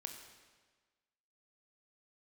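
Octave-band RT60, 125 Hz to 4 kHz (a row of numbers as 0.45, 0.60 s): 1.4, 1.4, 1.4, 1.4, 1.4, 1.3 s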